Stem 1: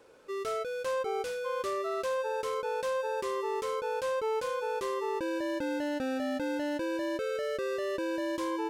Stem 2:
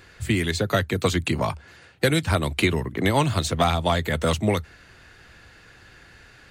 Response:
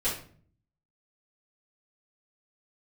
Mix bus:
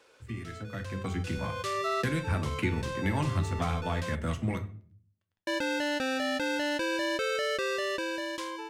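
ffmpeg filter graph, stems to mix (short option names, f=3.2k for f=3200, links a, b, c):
-filter_complex "[0:a]acompressor=threshold=-35dB:ratio=3,tiltshelf=f=1.4k:g=-9.5,volume=1.5dB,asplit=3[a][b][c];[a]atrim=end=4.15,asetpts=PTS-STARTPTS,afade=t=out:st=4.146:d=0.004:c=hsin[d];[b]atrim=start=4.15:end=5.47,asetpts=PTS-STARTPTS,volume=0[e];[c]atrim=start=5.47,asetpts=PTS-STARTPTS,afade=t=in:d=0.004:c=hsin[f];[d][e][f]concat=n=3:v=0:a=1[g];[1:a]equalizer=f=500:t=o:w=1:g=-11,equalizer=f=1k:t=o:w=1:g=-4,equalizer=f=4k:t=o:w=1:g=-11,aeval=exprs='sgn(val(0))*max(abs(val(0))-0.00708,0)':c=same,flanger=delay=7.7:depth=3.2:regen=71:speed=0.42:shape=triangular,volume=-12dB,asplit=3[h][i][j];[i]volume=-14dB[k];[j]apad=whole_len=383545[l];[g][l]sidechaincompress=threshold=-51dB:ratio=3:attack=7:release=464[m];[2:a]atrim=start_sample=2205[n];[k][n]afir=irnorm=-1:irlink=0[o];[m][h][o]amix=inputs=3:normalize=0,aemphasis=mode=reproduction:type=50kf,dynaudnorm=f=320:g=7:m=10.5dB"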